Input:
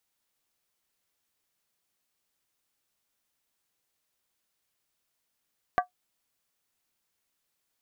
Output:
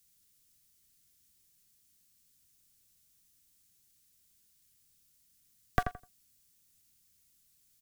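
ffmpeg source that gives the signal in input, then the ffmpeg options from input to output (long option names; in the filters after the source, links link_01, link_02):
-f lavfi -i "aevalsrc='0.15*pow(10,-3*t/0.12)*sin(2*PI*726*t)+0.0891*pow(10,-3*t/0.095)*sin(2*PI*1157.2*t)+0.0531*pow(10,-3*t/0.082)*sin(2*PI*1550.7*t)+0.0316*pow(10,-3*t/0.079)*sin(2*PI*1666.9*t)+0.0188*pow(10,-3*t/0.074)*sin(2*PI*1926.1*t)':duration=0.63:sample_rate=44100"
-filter_complex "[0:a]bass=frequency=250:gain=14,treble=frequency=4000:gain=12,acrossover=split=290|440|1200[link_01][link_02][link_03][link_04];[link_03]acrusher=bits=4:dc=4:mix=0:aa=0.000001[link_05];[link_01][link_02][link_05][link_04]amix=inputs=4:normalize=0,asplit=2[link_06][link_07];[link_07]adelay=84,lowpass=frequency=2000:poles=1,volume=-7.5dB,asplit=2[link_08][link_09];[link_09]adelay=84,lowpass=frequency=2000:poles=1,volume=0.22,asplit=2[link_10][link_11];[link_11]adelay=84,lowpass=frequency=2000:poles=1,volume=0.22[link_12];[link_06][link_08][link_10][link_12]amix=inputs=4:normalize=0"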